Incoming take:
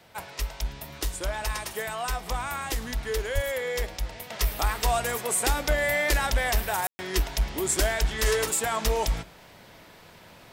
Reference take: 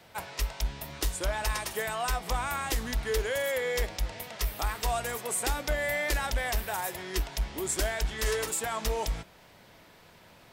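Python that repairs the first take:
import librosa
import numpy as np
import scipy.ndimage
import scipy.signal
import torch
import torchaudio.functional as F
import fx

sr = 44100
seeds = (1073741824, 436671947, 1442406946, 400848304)

y = fx.fix_deplosive(x, sr, at_s=(3.34,))
y = fx.fix_ambience(y, sr, seeds[0], print_start_s=9.76, print_end_s=10.26, start_s=6.87, end_s=6.99)
y = fx.fix_echo_inverse(y, sr, delay_ms=108, level_db=-21.0)
y = fx.fix_level(y, sr, at_s=4.3, step_db=-5.0)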